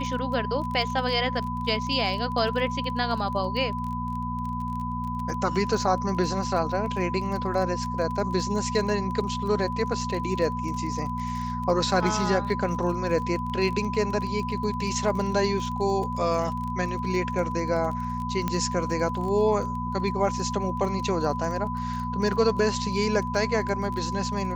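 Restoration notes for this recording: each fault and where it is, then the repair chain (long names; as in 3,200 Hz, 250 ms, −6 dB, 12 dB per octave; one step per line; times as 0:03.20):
surface crackle 25 per second −32 dBFS
mains hum 60 Hz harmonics 4 −32 dBFS
whistle 1,000 Hz −31 dBFS
0:18.48: click −13 dBFS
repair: click removal
hum removal 60 Hz, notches 4
notch filter 1,000 Hz, Q 30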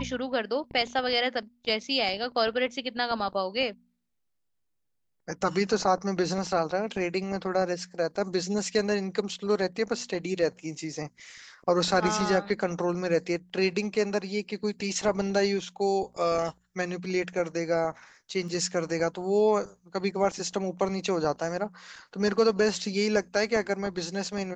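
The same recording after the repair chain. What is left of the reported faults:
0:18.48: click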